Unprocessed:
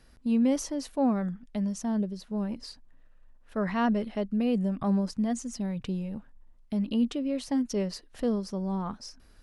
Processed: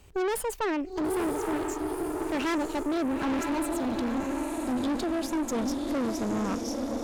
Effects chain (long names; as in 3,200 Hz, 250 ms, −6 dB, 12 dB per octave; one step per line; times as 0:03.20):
gliding playback speed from 163% → 105%
feedback delay with all-pass diffusion 923 ms, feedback 54%, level −5 dB
tube saturation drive 32 dB, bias 0.65
level +6.5 dB